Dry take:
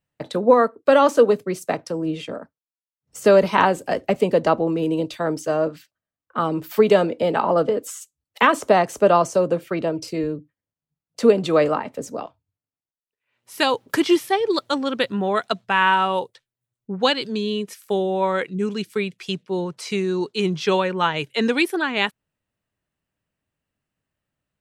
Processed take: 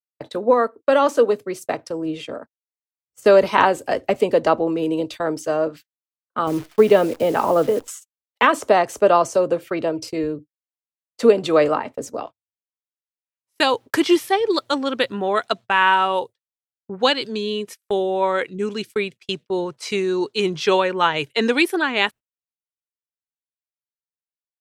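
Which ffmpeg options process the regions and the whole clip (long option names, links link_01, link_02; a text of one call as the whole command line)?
ffmpeg -i in.wav -filter_complex "[0:a]asettb=1/sr,asplit=3[link_01][link_02][link_03];[link_01]atrim=end=6.474[link_04];[link_02]atrim=start=6.47:end=7.88,asetpts=PTS-STARTPTS,afade=type=in:duration=0.004:curve=qsin,afade=type=out:start_time=1.406:duration=0.004:curve=qsin,lowpass=3700,lowshelf=frequency=280:gain=6.5,acrusher=bits=7:dc=4:mix=0:aa=0.000001[link_05];[link_03]atrim=start=7.876[link_06];[link_04][link_05]acrossfade=duration=0.004:curve1=hsin:curve2=qsin[link_07];[link_07][link_06]acrossfade=duration=0.004:curve1=qsin:curve2=hsin,agate=range=-34dB:threshold=-35dB:ratio=16:detection=peak,equalizer=frequency=180:width_type=o:width=0.53:gain=-8.5,dynaudnorm=framelen=320:gausssize=13:maxgain=11.5dB,volume=-1.5dB" out.wav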